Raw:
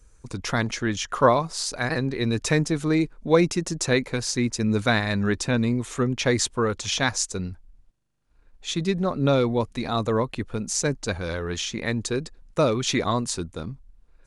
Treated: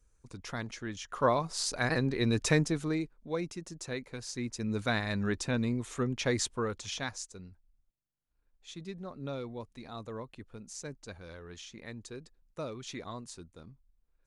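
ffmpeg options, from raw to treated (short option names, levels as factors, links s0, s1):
-af "volume=1.58,afade=t=in:st=1.05:d=0.64:silence=0.334965,afade=t=out:st=2.51:d=0.63:silence=0.251189,afade=t=in:st=4.06:d=1.08:silence=0.398107,afade=t=out:st=6.42:d=0.92:silence=0.316228"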